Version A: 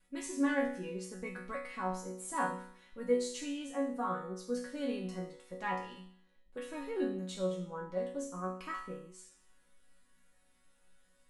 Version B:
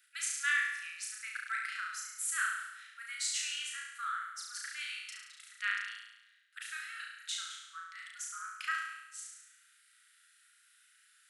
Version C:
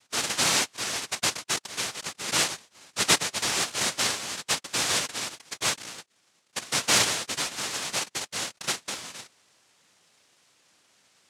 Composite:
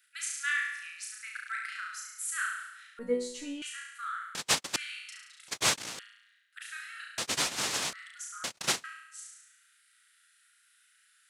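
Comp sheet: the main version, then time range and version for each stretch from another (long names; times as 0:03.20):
B
0:02.99–0:03.62: punch in from A
0:04.35–0:04.76: punch in from C
0:05.48–0:05.99: punch in from C
0:07.18–0:07.93: punch in from C
0:08.44–0:08.84: punch in from C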